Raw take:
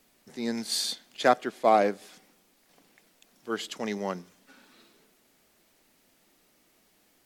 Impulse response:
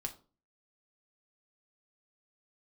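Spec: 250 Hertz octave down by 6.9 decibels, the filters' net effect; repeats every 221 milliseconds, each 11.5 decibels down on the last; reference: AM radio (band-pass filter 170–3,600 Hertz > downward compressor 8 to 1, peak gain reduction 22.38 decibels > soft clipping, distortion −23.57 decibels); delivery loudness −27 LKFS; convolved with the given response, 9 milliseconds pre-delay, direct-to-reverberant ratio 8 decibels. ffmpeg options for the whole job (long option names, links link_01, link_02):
-filter_complex "[0:a]equalizer=frequency=250:width_type=o:gain=-7.5,aecho=1:1:221|442|663:0.266|0.0718|0.0194,asplit=2[link_01][link_02];[1:a]atrim=start_sample=2205,adelay=9[link_03];[link_02][link_03]afir=irnorm=-1:irlink=0,volume=-7dB[link_04];[link_01][link_04]amix=inputs=2:normalize=0,highpass=170,lowpass=3600,acompressor=threshold=-38dB:ratio=8,asoftclip=threshold=-28.5dB,volume=17dB"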